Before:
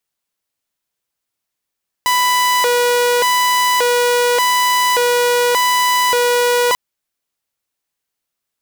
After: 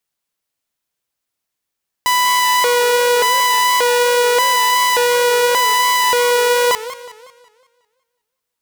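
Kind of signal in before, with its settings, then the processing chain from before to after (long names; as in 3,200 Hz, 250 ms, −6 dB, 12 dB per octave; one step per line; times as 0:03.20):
siren hi-lo 486–993 Hz 0.86 per second saw −9.5 dBFS 4.69 s
feedback echo with a swinging delay time 183 ms, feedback 45%, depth 182 cents, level −14.5 dB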